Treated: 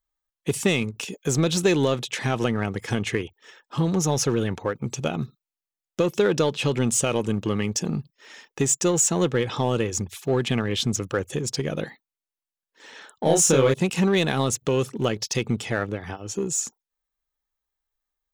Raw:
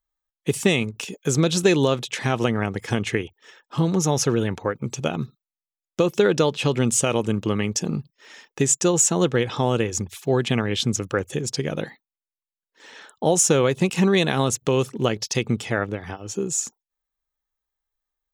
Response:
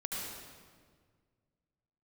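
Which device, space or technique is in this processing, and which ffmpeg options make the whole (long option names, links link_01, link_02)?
parallel distortion: -filter_complex "[0:a]asplit=2[link_01][link_02];[link_02]asoftclip=type=hard:threshold=-23dB,volume=-5dB[link_03];[link_01][link_03]amix=inputs=2:normalize=0,asettb=1/sr,asplit=3[link_04][link_05][link_06];[link_04]atrim=end=13.234[link_07];[link_05]atrim=start=13.23:end=13.74,asetpts=PTS-STARTPTS,afade=type=in:duration=0.004:curve=qsin,afade=type=out:start_time=0.506:duration=0.004:curve=qsin,asplit=2[link_08][link_09];[link_09]adelay=30,volume=-2dB[link_10];[link_08][link_10]amix=inputs=2:normalize=0,atrim=end_sample=22491[link_11];[link_06]atrim=start=13.736[link_12];[link_07][link_11]acrossfade=duration=0.004:curve1=hsin:curve2=qsin[link_13];[link_13][link_12]acrossfade=duration=0.004:curve1=qsin:curve2=hsin,volume=-4dB"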